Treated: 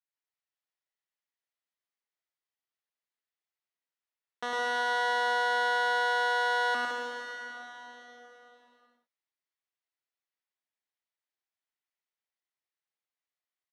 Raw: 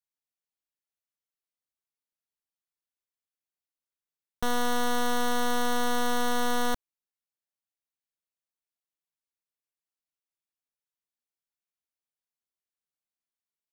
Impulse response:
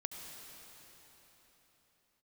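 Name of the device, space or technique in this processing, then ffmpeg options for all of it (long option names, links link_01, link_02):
station announcement: -filter_complex "[0:a]highpass=440,lowpass=4500,equalizer=frequency=1900:width_type=o:width=0.24:gain=6,aecho=1:1:105|163.3:0.708|0.501[link_01];[1:a]atrim=start_sample=2205[link_02];[link_01][link_02]afir=irnorm=-1:irlink=0"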